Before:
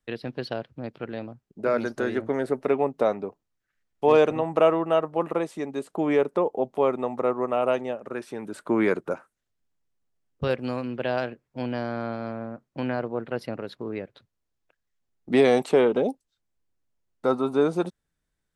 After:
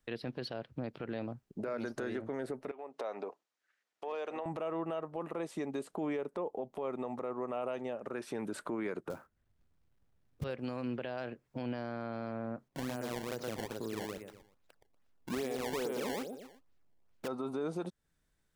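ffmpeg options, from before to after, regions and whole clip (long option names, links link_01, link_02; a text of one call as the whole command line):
ffmpeg -i in.wav -filter_complex "[0:a]asettb=1/sr,asplit=3[link_01][link_02][link_03];[link_01]atrim=end=2.714[link_04];[link_02]atrim=start=2.71:end=4.46,asetpts=PTS-STARTPTS,afade=type=in:duration=0.004:curve=qsin,afade=type=out:start_time=1.746:duration=0.004:curve=qsin,acompressor=threshold=-31dB:ratio=16:attack=3.2:release=140:knee=1:detection=peak,highpass=480,lowpass=7600[link_05];[link_03]atrim=start=4.456[link_06];[link_04][link_05]acrossfade=duration=0.004:curve1=hsin:curve2=qsin[link_07];[link_07][link_06]acrossfade=duration=0.004:curve1=qsin:curve2=hsin,asettb=1/sr,asplit=3[link_08][link_09][link_10];[link_08]atrim=end=9.104[link_11];[link_09]atrim=start=9.1:end=10.44,asetpts=PTS-STARTPTS,afade=type=in:duration=0.004:curve=qsin,afade=type=out:start_time=1.336:duration=0.004:curve=qsin,lowpass=2200,equalizer=frequency=60:width=0.34:gain=14,acrusher=bits=4:mode=log:mix=0:aa=0.000001[link_12];[link_10]atrim=start=10.436[link_13];[link_11][link_12]acrossfade=duration=0.004:curve1=hsin:curve2=qsin[link_14];[link_14][link_13]acrossfade=duration=0.004:curve1=qsin:curve2=hsin,asettb=1/sr,asplit=3[link_15][link_16][link_17];[link_15]atrim=end=12.684[link_18];[link_16]atrim=start=12.68:end=17.28,asetpts=PTS-STARTPTS,afade=type=in:duration=0.004:curve=qsin,afade=type=out:start_time=4.596:duration=0.004:curve=qsin,aecho=1:1:120|240|360|480:0.631|0.17|0.046|0.0124,atrim=end_sample=202860,acompressor=threshold=-51dB:ratio=1.5:attack=3.2:release=140:knee=1:detection=peak,acrusher=samples=20:mix=1:aa=0.000001:lfo=1:lforange=32:lforate=2.4[link_19];[link_17]atrim=start=17.276[link_20];[link_18][link_19]acrossfade=duration=0.004:curve1=hsin:curve2=qsin[link_21];[link_21][link_20]acrossfade=duration=0.004:curve1=qsin:curve2=hsin,acompressor=threshold=-37dB:ratio=2.5,alimiter=level_in=7dB:limit=-24dB:level=0:latency=1:release=40,volume=-7dB,volume=2.5dB" out.wav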